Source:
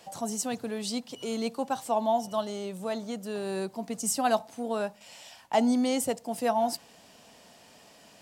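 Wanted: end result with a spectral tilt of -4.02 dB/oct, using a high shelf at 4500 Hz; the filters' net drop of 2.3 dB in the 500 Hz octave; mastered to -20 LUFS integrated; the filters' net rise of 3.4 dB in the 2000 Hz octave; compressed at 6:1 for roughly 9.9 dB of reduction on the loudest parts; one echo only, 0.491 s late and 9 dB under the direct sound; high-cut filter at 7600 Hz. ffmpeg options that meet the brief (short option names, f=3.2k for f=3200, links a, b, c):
-af "lowpass=7.6k,equalizer=f=500:t=o:g=-3.5,equalizer=f=2k:t=o:g=6,highshelf=f=4.5k:g=-7.5,acompressor=threshold=-32dB:ratio=6,aecho=1:1:491:0.355,volume=17dB"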